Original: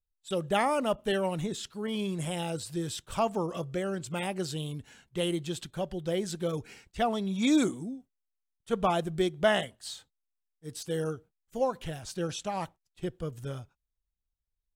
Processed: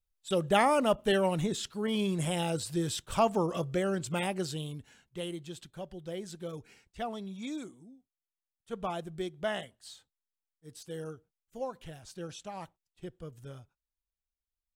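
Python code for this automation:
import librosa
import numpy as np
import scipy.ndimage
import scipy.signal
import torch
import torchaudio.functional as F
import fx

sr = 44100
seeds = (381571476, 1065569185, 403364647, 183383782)

y = fx.gain(x, sr, db=fx.line((4.11, 2.0), (5.33, -8.5), (7.24, -8.5), (7.68, -17.5), (8.82, -8.5)))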